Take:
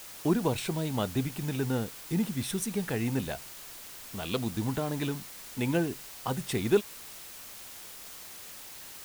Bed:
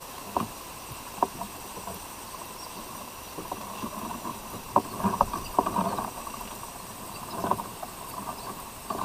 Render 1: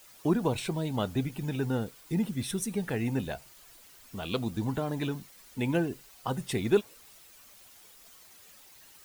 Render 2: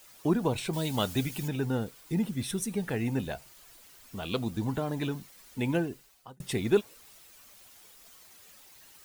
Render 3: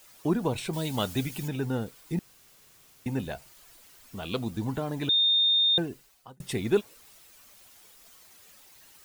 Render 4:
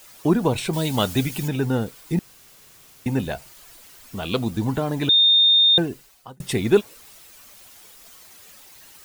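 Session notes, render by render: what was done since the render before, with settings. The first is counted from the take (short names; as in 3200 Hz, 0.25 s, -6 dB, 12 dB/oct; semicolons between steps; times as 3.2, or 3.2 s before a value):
denoiser 11 dB, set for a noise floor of -46 dBFS
0.73–1.48 high shelf 2100 Hz +11 dB; 5.72–6.4 fade out
2.19–3.06 room tone; 5.09–5.78 bleep 3650 Hz -19.5 dBFS
gain +7.5 dB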